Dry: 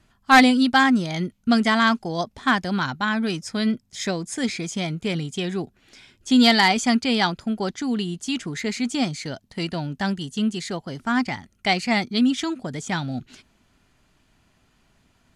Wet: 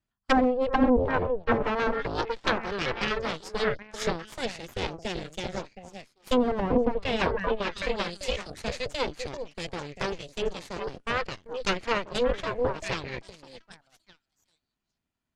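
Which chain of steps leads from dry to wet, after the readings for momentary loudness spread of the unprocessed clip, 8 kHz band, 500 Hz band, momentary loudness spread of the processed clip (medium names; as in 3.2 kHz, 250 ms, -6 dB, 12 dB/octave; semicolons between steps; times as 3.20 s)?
13 LU, -10.5 dB, +2.5 dB, 12 LU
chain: repeats whose band climbs or falls 390 ms, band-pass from 290 Hz, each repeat 1.4 oct, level -1.5 dB; Chebyshev shaper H 3 -10 dB, 6 -14 dB, 7 -36 dB, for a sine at -4 dBFS; low-pass that closes with the level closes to 630 Hz, closed at -16.5 dBFS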